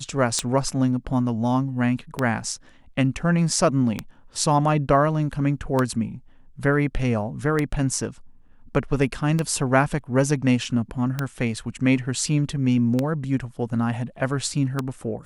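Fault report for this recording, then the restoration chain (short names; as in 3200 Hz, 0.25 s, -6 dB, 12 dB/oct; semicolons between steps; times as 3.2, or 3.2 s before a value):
tick 33 1/3 rpm -9 dBFS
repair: de-click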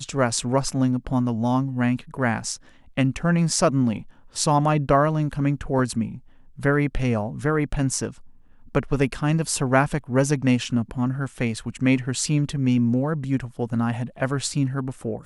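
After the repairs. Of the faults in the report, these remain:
none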